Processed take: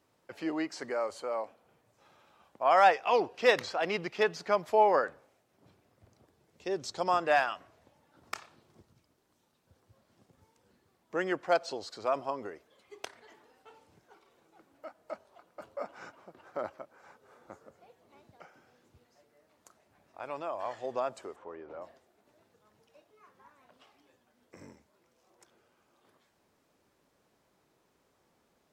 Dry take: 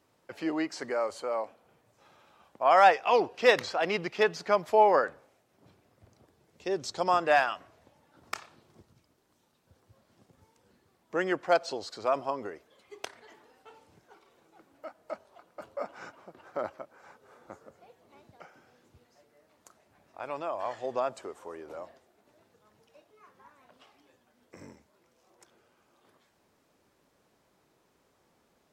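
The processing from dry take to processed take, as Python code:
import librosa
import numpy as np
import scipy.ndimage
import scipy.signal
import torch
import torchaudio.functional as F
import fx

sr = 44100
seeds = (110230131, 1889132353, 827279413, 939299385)

y = fx.lowpass(x, sr, hz=2600.0, slope=12, at=(21.35, 21.8), fade=0.02)
y = y * librosa.db_to_amplitude(-2.5)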